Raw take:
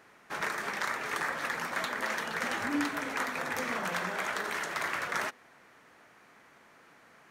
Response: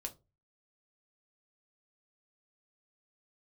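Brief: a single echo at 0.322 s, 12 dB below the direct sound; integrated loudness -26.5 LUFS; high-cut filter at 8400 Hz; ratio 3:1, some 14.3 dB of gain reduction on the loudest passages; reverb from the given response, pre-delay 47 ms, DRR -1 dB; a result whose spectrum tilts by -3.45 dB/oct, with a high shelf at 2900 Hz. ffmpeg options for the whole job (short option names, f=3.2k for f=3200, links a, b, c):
-filter_complex "[0:a]lowpass=8.4k,highshelf=f=2.9k:g=-5,acompressor=threshold=-47dB:ratio=3,aecho=1:1:322:0.251,asplit=2[a][b];[1:a]atrim=start_sample=2205,adelay=47[c];[b][c]afir=irnorm=-1:irlink=0,volume=3.5dB[d];[a][d]amix=inputs=2:normalize=0,volume=15.5dB"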